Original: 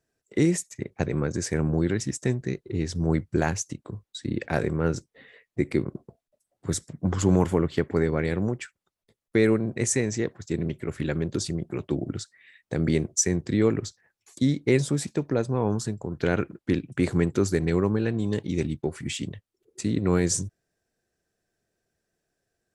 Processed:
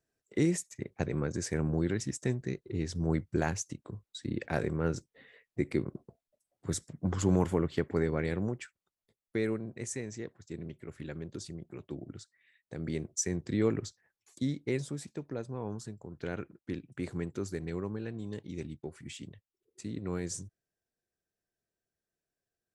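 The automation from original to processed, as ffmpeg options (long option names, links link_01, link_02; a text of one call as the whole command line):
ffmpeg -i in.wav -af "volume=1.5dB,afade=type=out:start_time=8.28:duration=1.53:silence=0.421697,afade=type=in:start_time=12.77:duration=0.95:silence=0.421697,afade=type=out:start_time=13.72:duration=1.25:silence=0.446684" out.wav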